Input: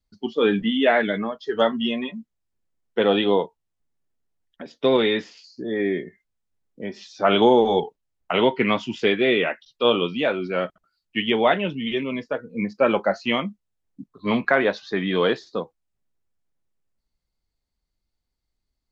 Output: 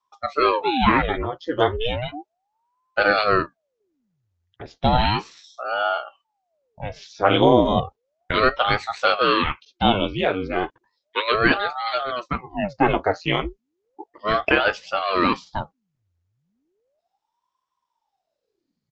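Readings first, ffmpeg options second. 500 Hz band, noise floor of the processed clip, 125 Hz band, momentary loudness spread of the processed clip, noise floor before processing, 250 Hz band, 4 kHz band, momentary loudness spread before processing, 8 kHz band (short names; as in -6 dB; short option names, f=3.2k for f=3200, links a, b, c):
-2.0 dB, -80 dBFS, +5.5 dB, 14 LU, -80 dBFS, -1.5 dB, +1.0 dB, 13 LU, n/a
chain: -af "aresample=16000,aresample=44100,aeval=exprs='val(0)*sin(2*PI*560*n/s+560*0.85/0.34*sin(2*PI*0.34*n/s))':c=same,volume=3.5dB"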